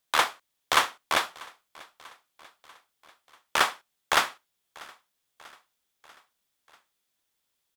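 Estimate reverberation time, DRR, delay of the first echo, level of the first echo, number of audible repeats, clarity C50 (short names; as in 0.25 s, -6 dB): none, none, 0.641 s, -23.0 dB, 3, none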